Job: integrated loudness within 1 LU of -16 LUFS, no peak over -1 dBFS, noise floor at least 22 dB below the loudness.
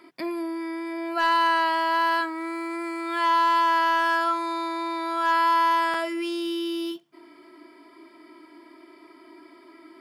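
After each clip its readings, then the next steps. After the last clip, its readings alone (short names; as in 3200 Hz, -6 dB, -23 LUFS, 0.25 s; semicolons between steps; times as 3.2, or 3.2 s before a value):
clipped 0.4%; flat tops at -14.5 dBFS; dropouts 1; longest dropout 2.6 ms; loudness -24.0 LUFS; peak -14.5 dBFS; loudness target -16.0 LUFS
-> clip repair -14.5 dBFS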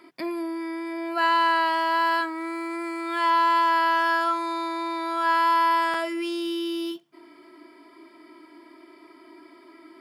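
clipped 0.0%; dropouts 1; longest dropout 2.6 ms
-> interpolate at 5.94, 2.6 ms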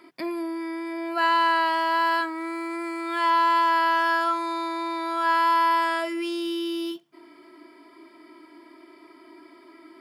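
dropouts 0; loudness -24.0 LUFS; peak -11.5 dBFS; loudness target -16.0 LUFS
-> gain +8 dB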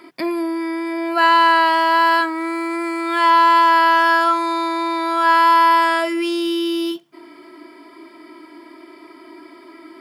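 loudness -16.0 LUFS; peak -3.5 dBFS; noise floor -45 dBFS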